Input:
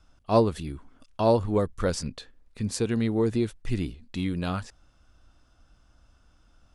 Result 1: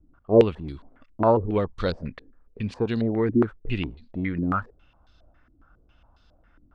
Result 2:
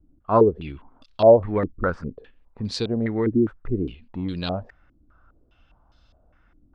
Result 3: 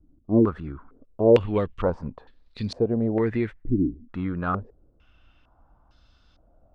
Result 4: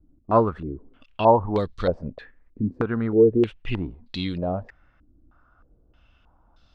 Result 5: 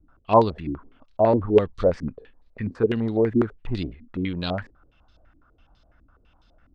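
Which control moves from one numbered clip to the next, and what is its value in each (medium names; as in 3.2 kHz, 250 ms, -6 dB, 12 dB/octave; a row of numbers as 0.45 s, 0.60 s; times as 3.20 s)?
step-sequenced low-pass, rate: 7.3 Hz, 4.9 Hz, 2.2 Hz, 3.2 Hz, 12 Hz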